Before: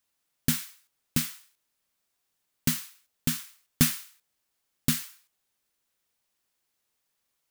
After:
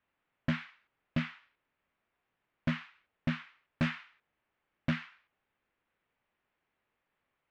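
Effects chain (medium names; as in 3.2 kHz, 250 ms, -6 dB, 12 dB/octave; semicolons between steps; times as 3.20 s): low-pass 2.5 kHz 24 dB/octave; in parallel at -0.5 dB: peak limiter -16 dBFS, peak gain reduction 7.5 dB; on the sum: saturation -22 dBFS, distortion -6 dB; trim -1.5 dB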